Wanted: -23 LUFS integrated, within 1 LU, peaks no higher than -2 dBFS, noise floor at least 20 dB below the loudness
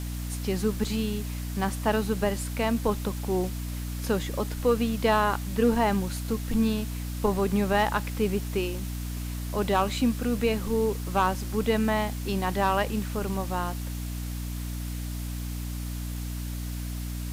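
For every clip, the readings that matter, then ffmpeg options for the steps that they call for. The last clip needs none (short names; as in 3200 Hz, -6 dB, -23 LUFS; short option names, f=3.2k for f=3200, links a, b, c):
hum 60 Hz; harmonics up to 300 Hz; hum level -30 dBFS; noise floor -33 dBFS; noise floor target -49 dBFS; loudness -28.5 LUFS; peak -12.0 dBFS; loudness target -23.0 LUFS
-> -af "bandreject=f=60:t=h:w=4,bandreject=f=120:t=h:w=4,bandreject=f=180:t=h:w=4,bandreject=f=240:t=h:w=4,bandreject=f=300:t=h:w=4"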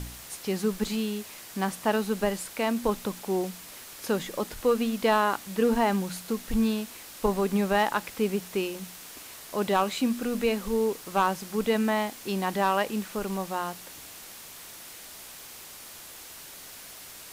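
hum none; noise floor -45 dBFS; noise floor target -48 dBFS
-> -af "afftdn=nr=6:nf=-45"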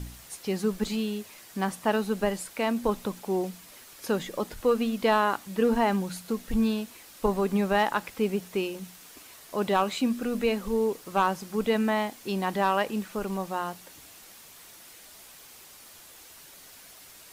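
noise floor -50 dBFS; loudness -28.0 LUFS; peak -13.5 dBFS; loudness target -23.0 LUFS
-> -af "volume=5dB"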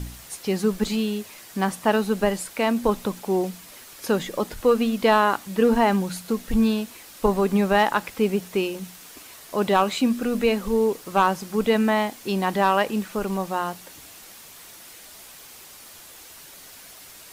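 loudness -23.0 LUFS; peak -8.5 dBFS; noise floor -45 dBFS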